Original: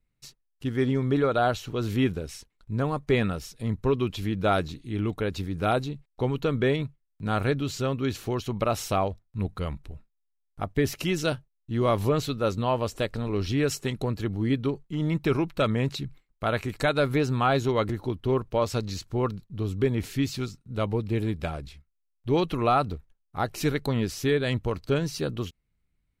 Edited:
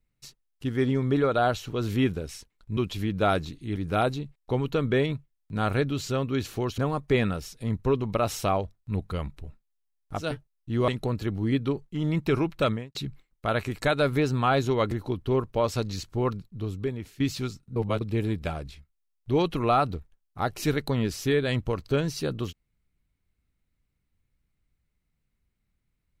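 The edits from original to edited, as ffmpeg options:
ffmpeg -i in.wav -filter_complex "[0:a]asplit=11[link_01][link_02][link_03][link_04][link_05][link_06][link_07][link_08][link_09][link_10][link_11];[link_01]atrim=end=2.772[link_12];[link_02]atrim=start=3.998:end=4.992[link_13];[link_03]atrim=start=5.458:end=8.482[link_14];[link_04]atrim=start=2.768:end=4.002[link_15];[link_05]atrim=start=8.478:end=10.84[link_16];[link_06]atrim=start=11.14:end=11.892[link_17];[link_07]atrim=start=13.858:end=15.93,asetpts=PTS-STARTPTS,afade=type=out:start_time=1.822:duration=0.25:curve=qua[link_18];[link_08]atrim=start=15.93:end=20.18,asetpts=PTS-STARTPTS,afade=type=in:duration=0.004:curve=hsin,afade=type=out:start_time=3.49:duration=0.76:silence=0.141254[link_19];[link_09]atrim=start=20.18:end=20.742,asetpts=PTS-STARTPTS,afade=type=in:duration=0.004:curve=hsin:silence=0.141254[link_20];[link_10]atrim=start=20.738:end=20.992,asetpts=PTS-STARTPTS,areverse[link_21];[link_11]atrim=start=20.988[link_22];[link_12][link_13]acrossfade=duration=0.004:curve1=hsin:curve2=hsin[link_23];[link_23][link_14]acrossfade=duration=0.004:curve1=hsin:curve2=hsin[link_24];[link_24][link_15]acrossfade=duration=0.004:curve1=hsin:curve2=hsin[link_25];[link_25][link_16]acrossfade=duration=0.004:curve1=hsin:curve2=hsin[link_26];[link_26][link_17]acrossfade=duration=0.24:curve1=tri:curve2=tri[link_27];[link_18][link_19][link_20]concat=n=3:v=0:a=1[link_28];[link_27][link_28]acrossfade=duration=0.004:curve1=hsin:curve2=hsin[link_29];[link_29][link_21]acrossfade=duration=0.004:curve1=hsin:curve2=hsin[link_30];[link_30][link_22]acrossfade=duration=0.004:curve1=hsin:curve2=hsin" out.wav

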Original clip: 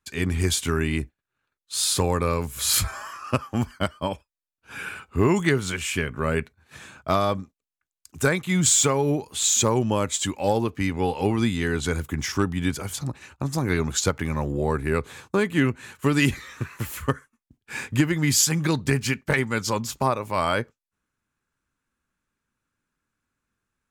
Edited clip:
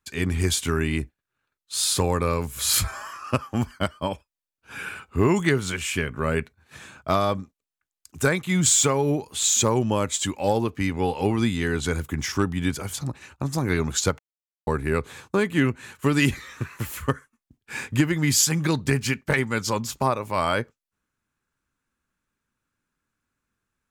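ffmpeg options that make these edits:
ffmpeg -i in.wav -filter_complex "[0:a]asplit=3[link_01][link_02][link_03];[link_01]atrim=end=14.19,asetpts=PTS-STARTPTS,afade=type=out:start_time=14.186:duration=0.004:curve=hsin[link_04];[link_02]atrim=start=14.19:end=14.67,asetpts=PTS-STARTPTS,volume=0[link_05];[link_03]atrim=start=14.67,asetpts=PTS-STARTPTS,afade=type=in:duration=0.004:curve=hsin[link_06];[link_04][link_05][link_06]concat=n=3:v=0:a=1" out.wav

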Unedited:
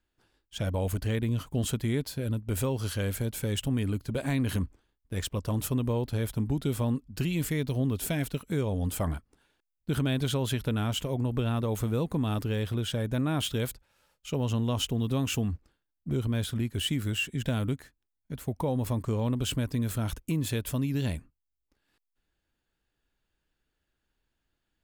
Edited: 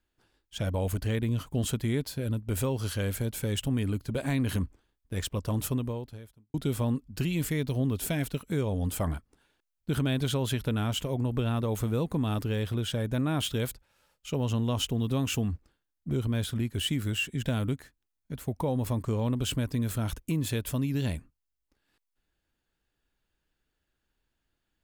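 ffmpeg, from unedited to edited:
ffmpeg -i in.wav -filter_complex "[0:a]asplit=2[link_01][link_02];[link_01]atrim=end=6.54,asetpts=PTS-STARTPTS,afade=type=out:start_time=5.7:duration=0.84:curve=qua[link_03];[link_02]atrim=start=6.54,asetpts=PTS-STARTPTS,afade=type=in:duration=0.004:curve=hsin[link_04];[link_03][link_04]concat=n=2:v=0:a=1" out.wav

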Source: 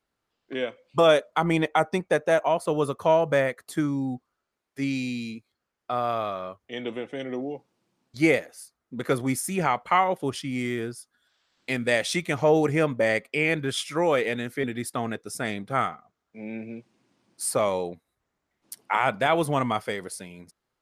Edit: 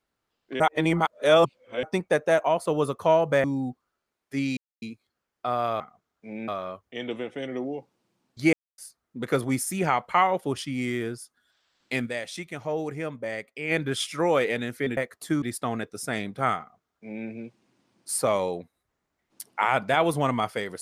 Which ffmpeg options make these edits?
ffmpeg -i in.wav -filter_complex "[0:a]asplit=14[link_01][link_02][link_03][link_04][link_05][link_06][link_07][link_08][link_09][link_10][link_11][link_12][link_13][link_14];[link_01]atrim=end=0.602[link_15];[link_02]atrim=start=0.598:end=1.832,asetpts=PTS-STARTPTS,areverse[link_16];[link_03]atrim=start=1.828:end=3.442[link_17];[link_04]atrim=start=3.888:end=5.02,asetpts=PTS-STARTPTS,afade=type=out:start_time=1.128:duration=0.004:curve=hsin[link_18];[link_05]atrim=start=5.02:end=5.27,asetpts=PTS-STARTPTS,volume=0[link_19];[link_06]atrim=start=5.27:end=6.252,asetpts=PTS-STARTPTS,afade=type=in:duration=0.004:curve=hsin[link_20];[link_07]atrim=start=15.908:end=16.592[link_21];[link_08]atrim=start=6.248:end=8.3,asetpts=PTS-STARTPTS,afade=type=out:start_time=2.048:duration=0.004:curve=hsin[link_22];[link_09]atrim=start=8.3:end=8.55,asetpts=PTS-STARTPTS,volume=0[link_23];[link_10]atrim=start=8.55:end=12.12,asetpts=PTS-STARTPTS,afade=type=in:duration=0.004:curve=hsin,afade=type=out:start_time=3.27:duration=0.3:curve=exp:silence=0.334965[link_24];[link_11]atrim=start=12.12:end=13.19,asetpts=PTS-STARTPTS,volume=-9.5dB[link_25];[link_12]atrim=start=13.19:end=14.742,asetpts=PTS-STARTPTS,afade=type=in:duration=0.3:curve=exp:silence=0.334965[link_26];[link_13]atrim=start=3.438:end=3.892[link_27];[link_14]atrim=start=14.738[link_28];[link_15][link_16]acrossfade=duration=0.004:curve1=hsin:curve2=hsin[link_29];[link_29][link_17]acrossfade=duration=0.004:curve1=hsin:curve2=hsin[link_30];[link_18][link_19][link_20]concat=n=3:v=0:a=1[link_31];[link_30][link_31]acrossfade=duration=0.004:curve1=hsin:curve2=hsin[link_32];[link_32][link_21]acrossfade=duration=0.004:curve1=hsin:curve2=hsin[link_33];[link_22][link_23][link_24][link_25][link_26]concat=n=5:v=0:a=1[link_34];[link_33][link_34]acrossfade=duration=0.004:curve1=hsin:curve2=hsin[link_35];[link_35][link_27]acrossfade=duration=0.004:curve1=hsin:curve2=hsin[link_36];[link_36][link_28]acrossfade=duration=0.004:curve1=hsin:curve2=hsin" out.wav

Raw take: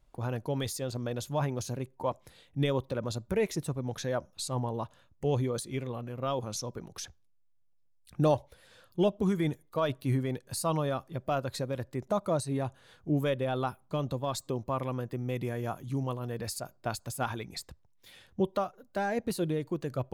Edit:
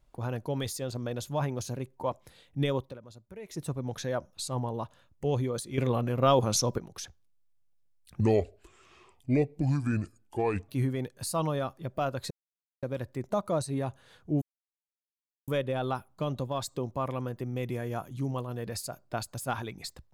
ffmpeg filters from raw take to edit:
ffmpeg -i in.wav -filter_complex "[0:a]asplit=9[link_01][link_02][link_03][link_04][link_05][link_06][link_07][link_08][link_09];[link_01]atrim=end=2.99,asetpts=PTS-STARTPTS,afade=type=out:start_time=2.75:duration=0.24:silence=0.158489[link_10];[link_02]atrim=start=2.99:end=3.44,asetpts=PTS-STARTPTS,volume=-16dB[link_11];[link_03]atrim=start=3.44:end=5.782,asetpts=PTS-STARTPTS,afade=type=in:duration=0.24:silence=0.158489[link_12];[link_04]atrim=start=5.778:end=6.782,asetpts=PTS-STARTPTS,volume=9.5dB[link_13];[link_05]atrim=start=6.778:end=8.204[link_14];[link_06]atrim=start=8.2:end=9.99,asetpts=PTS-STARTPTS,asetrate=31752,aresample=44100[link_15];[link_07]atrim=start=9.986:end=11.61,asetpts=PTS-STARTPTS,afade=type=out:start_time=1.62:duration=0.004:curve=hsin,apad=pad_dur=0.52[link_16];[link_08]atrim=start=11.61:end=13.2,asetpts=PTS-STARTPTS,afade=type=in:duration=0.004:curve=hsin,afade=type=out:start_time=1.586:duration=0.004:curve=hsin,apad=pad_dur=1.06[link_17];[link_09]atrim=start=13.2,asetpts=PTS-STARTPTS,afade=type=in:duration=0.004:curve=hsin[link_18];[link_10][link_11][link_12]concat=n=3:v=0:a=1[link_19];[link_19][link_13]acrossfade=duration=0.004:curve1=hsin:curve2=hsin[link_20];[link_20][link_14]acrossfade=duration=0.004:curve1=hsin:curve2=hsin[link_21];[link_21][link_15]acrossfade=duration=0.004:curve1=hsin:curve2=hsin[link_22];[link_16][link_17][link_18]concat=n=3:v=0:a=1[link_23];[link_22][link_23]acrossfade=duration=0.004:curve1=hsin:curve2=hsin" out.wav

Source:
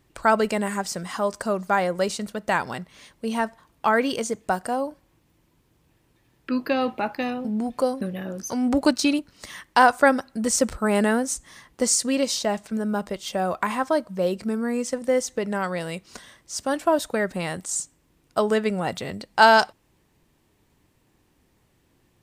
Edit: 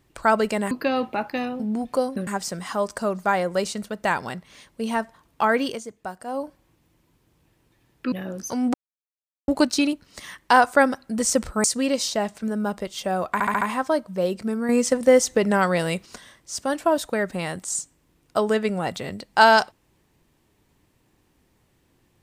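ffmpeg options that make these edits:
ffmpeg -i in.wav -filter_complex "[0:a]asplit=14[link_01][link_02][link_03][link_04][link_05][link_06][link_07][link_08][link_09][link_10][link_11][link_12][link_13][link_14];[link_01]atrim=end=0.712[link_15];[link_02]atrim=start=6.558:end=8.122[link_16];[link_03]atrim=start=0.708:end=4.26,asetpts=PTS-STARTPTS,afade=type=out:start_time=3.382:duration=0.17:silence=0.334965[link_17];[link_04]atrim=start=4.26:end=4.69,asetpts=PTS-STARTPTS,volume=-9.5dB[link_18];[link_05]atrim=start=4.69:end=6.562,asetpts=PTS-STARTPTS,afade=type=in:duration=0.17:silence=0.334965[link_19];[link_06]atrim=start=8.118:end=8.74,asetpts=PTS-STARTPTS,afade=type=out:start_time=0.618:duration=0.004:curve=hsin,apad=pad_dur=0.74[link_20];[link_07]atrim=start=8.74:end=10.902,asetpts=PTS-STARTPTS,afade=type=in:duration=0.004:curve=hsin[link_21];[link_08]atrim=start=11.928:end=13.692[link_22];[link_09]atrim=start=13.618:end=13.692[link_23];[link_10]atrim=start=13.618:end=13.692[link_24];[link_11]atrim=start=13.618:end=13.692[link_25];[link_12]atrim=start=13.618:end=14.702[link_26];[link_13]atrim=start=14.698:end=16.072,asetpts=PTS-STARTPTS,volume=6.5dB[link_27];[link_14]atrim=start=16.068[link_28];[link_15][link_16]acrossfade=duration=0.004:curve1=hsin:curve2=hsin[link_29];[link_17][link_18][link_19]concat=n=3:v=0:a=1[link_30];[link_29][link_30]acrossfade=duration=0.004:curve1=hsin:curve2=hsin[link_31];[link_20][link_21]concat=n=2:v=0:a=1[link_32];[link_31][link_32]acrossfade=duration=0.004:curve1=hsin:curve2=hsin[link_33];[link_33][link_22]acrossfade=duration=0.004:curve1=hsin:curve2=hsin[link_34];[link_34][link_23]acrossfade=duration=0.004:curve1=hsin:curve2=hsin[link_35];[link_35][link_24]acrossfade=duration=0.004:curve1=hsin:curve2=hsin[link_36];[link_36][link_25]acrossfade=duration=0.004:curve1=hsin:curve2=hsin[link_37];[link_37][link_26]acrossfade=duration=0.004:curve1=hsin:curve2=hsin[link_38];[link_38][link_27]acrossfade=duration=0.004:curve1=hsin:curve2=hsin[link_39];[link_39][link_28]acrossfade=duration=0.004:curve1=hsin:curve2=hsin" out.wav

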